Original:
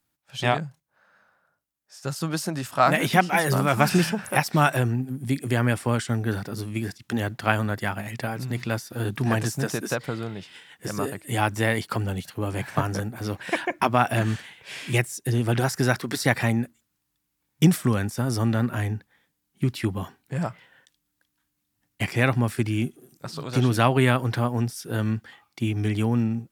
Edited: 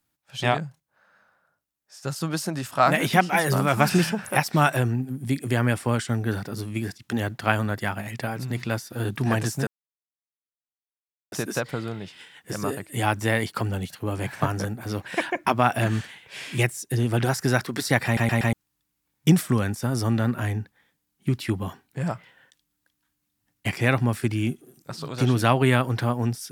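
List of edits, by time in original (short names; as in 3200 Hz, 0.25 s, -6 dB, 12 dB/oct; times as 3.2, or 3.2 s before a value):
9.67 insert silence 1.65 s
16.4 stutter in place 0.12 s, 4 plays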